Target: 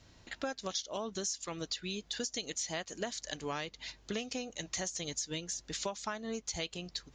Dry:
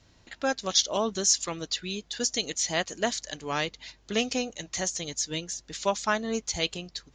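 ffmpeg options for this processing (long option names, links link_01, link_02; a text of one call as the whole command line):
ffmpeg -i in.wav -af "acompressor=threshold=-34dB:ratio=12" out.wav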